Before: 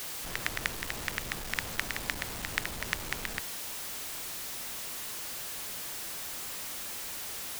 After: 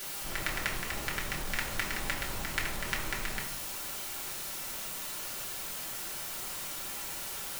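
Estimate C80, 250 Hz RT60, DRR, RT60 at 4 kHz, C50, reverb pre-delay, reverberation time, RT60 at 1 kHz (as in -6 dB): 9.0 dB, 0.85 s, -4.5 dB, 0.45 s, 6.5 dB, 3 ms, 0.75 s, 0.80 s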